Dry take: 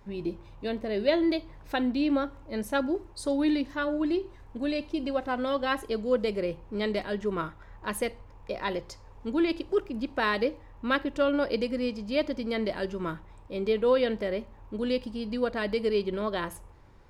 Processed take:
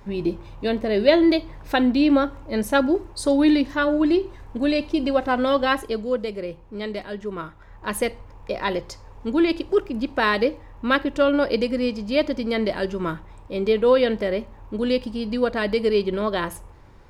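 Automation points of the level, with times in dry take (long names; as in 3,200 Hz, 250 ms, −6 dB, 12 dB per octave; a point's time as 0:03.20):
0:05.61 +8.5 dB
0:06.31 −0.5 dB
0:07.44 −0.5 dB
0:08.00 +6.5 dB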